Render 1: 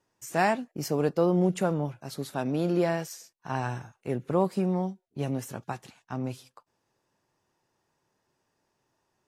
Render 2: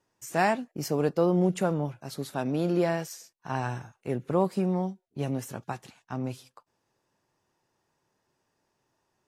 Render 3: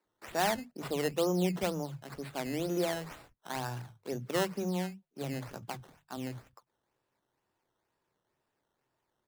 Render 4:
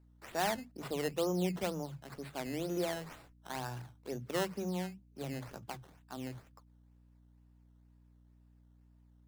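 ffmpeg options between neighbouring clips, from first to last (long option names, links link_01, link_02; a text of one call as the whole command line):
ffmpeg -i in.wav -af anull out.wav
ffmpeg -i in.wav -filter_complex "[0:a]bandreject=frequency=50:width_type=h:width=6,bandreject=frequency=100:width_type=h:width=6,bandreject=frequency=150:width_type=h:width=6,acrusher=samples=13:mix=1:aa=0.000001:lfo=1:lforange=13:lforate=2.1,acrossover=split=190[link_01][link_02];[link_01]adelay=50[link_03];[link_03][link_02]amix=inputs=2:normalize=0,volume=-5dB" out.wav
ffmpeg -i in.wav -af "aeval=exprs='val(0)+0.00126*(sin(2*PI*60*n/s)+sin(2*PI*2*60*n/s)/2+sin(2*PI*3*60*n/s)/3+sin(2*PI*4*60*n/s)/4+sin(2*PI*5*60*n/s)/5)':channel_layout=same,volume=-3.5dB" out.wav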